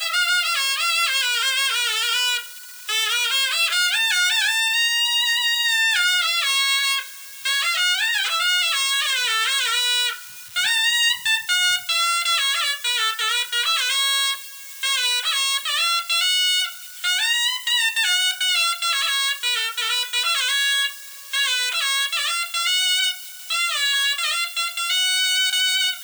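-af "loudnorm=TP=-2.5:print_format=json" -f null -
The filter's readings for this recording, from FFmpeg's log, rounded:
"input_i" : "-18.7",
"input_tp" : "-9.5",
"input_lra" : "2.1",
"input_thresh" : "-28.8",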